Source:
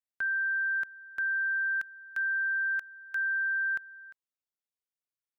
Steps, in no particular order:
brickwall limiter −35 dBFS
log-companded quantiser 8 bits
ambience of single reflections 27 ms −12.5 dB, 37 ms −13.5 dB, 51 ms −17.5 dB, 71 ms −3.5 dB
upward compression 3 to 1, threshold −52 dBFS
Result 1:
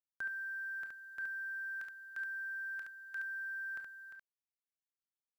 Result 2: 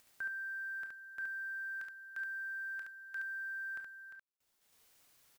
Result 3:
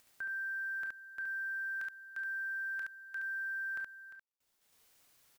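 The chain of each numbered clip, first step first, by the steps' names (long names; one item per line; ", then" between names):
log-companded quantiser, then brickwall limiter, then ambience of single reflections, then upward compression
upward compression, then brickwall limiter, then log-companded quantiser, then ambience of single reflections
upward compression, then log-companded quantiser, then ambience of single reflections, then brickwall limiter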